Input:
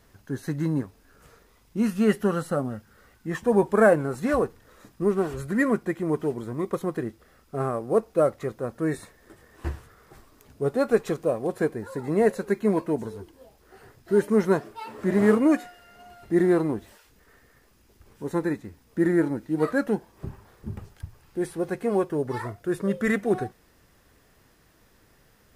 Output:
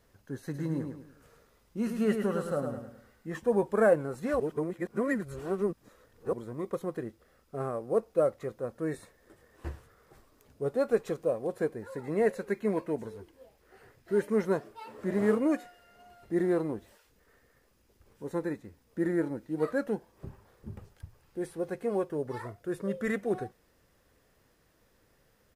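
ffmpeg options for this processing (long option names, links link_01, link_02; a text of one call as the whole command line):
ffmpeg -i in.wav -filter_complex "[0:a]asplit=3[link_01][link_02][link_03];[link_01]afade=type=out:start_time=0.53:duration=0.02[link_04];[link_02]aecho=1:1:105|210|315|420:0.501|0.185|0.0686|0.0254,afade=type=in:start_time=0.53:duration=0.02,afade=type=out:start_time=3.38:duration=0.02[link_05];[link_03]afade=type=in:start_time=3.38:duration=0.02[link_06];[link_04][link_05][link_06]amix=inputs=3:normalize=0,asettb=1/sr,asplit=3[link_07][link_08][link_09];[link_07]atrim=end=11.814[link_10];[link_08]atrim=start=11.81:end=14.42,asetpts=PTS-STARTPTS,afade=type=in:duration=0.004:curve=qsin,afade=type=out:start_time=2.606:duration=0.004:curve=qsin,equalizer=frequency=2100:width=1.5:gain=5[link_11];[link_09]atrim=start=14.416[link_12];[link_10][link_11]acrossfade=duration=0.004:curve1=hsin:curve2=qsin[link_13];[link_13][link_12]acrossfade=duration=0.004:curve1=qsin:curve2=hsin,asplit=3[link_14][link_15][link_16];[link_14]atrim=end=4.402[link_17];[link_15]atrim=start=4.398:end=6.332,asetpts=PTS-STARTPTS,areverse[link_18];[link_16]atrim=start=6.328[link_19];[link_17][link_18]acrossfade=duration=0.004:curve1=hsin:curve2=hsin[link_20];[link_20][link_19]acrossfade=duration=0.004:curve1=hsin:curve2=hsin,equalizer=frequency=520:width=3.4:gain=5.5,volume=-8dB" out.wav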